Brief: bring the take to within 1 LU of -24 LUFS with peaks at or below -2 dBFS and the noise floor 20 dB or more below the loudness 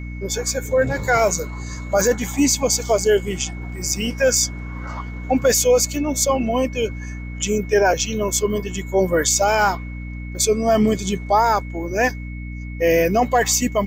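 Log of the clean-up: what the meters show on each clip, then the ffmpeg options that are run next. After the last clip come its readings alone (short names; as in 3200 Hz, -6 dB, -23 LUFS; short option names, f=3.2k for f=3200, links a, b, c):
hum 60 Hz; harmonics up to 300 Hz; hum level -28 dBFS; steady tone 2200 Hz; tone level -40 dBFS; loudness -19.5 LUFS; peak -6.5 dBFS; loudness target -24.0 LUFS
-> -af "bandreject=f=60:t=h:w=4,bandreject=f=120:t=h:w=4,bandreject=f=180:t=h:w=4,bandreject=f=240:t=h:w=4,bandreject=f=300:t=h:w=4"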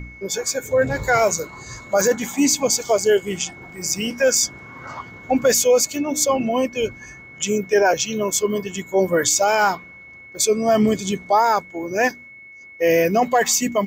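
hum none; steady tone 2200 Hz; tone level -40 dBFS
-> -af "bandreject=f=2.2k:w=30"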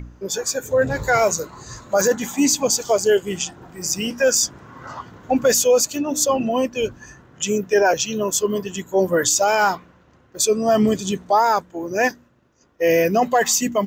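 steady tone none; loudness -19.5 LUFS; peak -7.0 dBFS; loudness target -24.0 LUFS
-> -af "volume=-4.5dB"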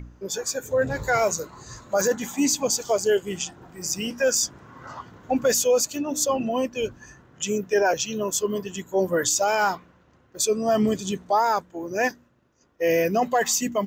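loudness -24.0 LUFS; peak -11.5 dBFS; noise floor -60 dBFS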